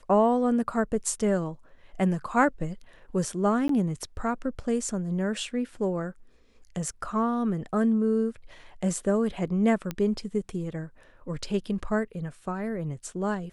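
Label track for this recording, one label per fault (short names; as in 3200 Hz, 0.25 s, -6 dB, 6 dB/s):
3.680000	3.690000	gap 13 ms
9.910000	9.910000	pop -17 dBFS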